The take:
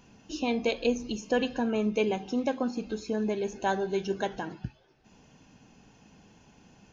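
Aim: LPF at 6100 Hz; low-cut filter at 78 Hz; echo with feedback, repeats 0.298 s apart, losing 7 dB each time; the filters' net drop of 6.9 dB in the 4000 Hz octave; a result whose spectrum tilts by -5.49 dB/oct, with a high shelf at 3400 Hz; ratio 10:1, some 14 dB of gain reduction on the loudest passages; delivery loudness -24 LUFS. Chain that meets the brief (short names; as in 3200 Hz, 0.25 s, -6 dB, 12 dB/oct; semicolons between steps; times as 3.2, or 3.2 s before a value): HPF 78 Hz; LPF 6100 Hz; high shelf 3400 Hz -4.5 dB; bell 4000 Hz -6 dB; compressor 10:1, threshold -36 dBFS; feedback echo 0.298 s, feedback 45%, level -7 dB; gain +16.5 dB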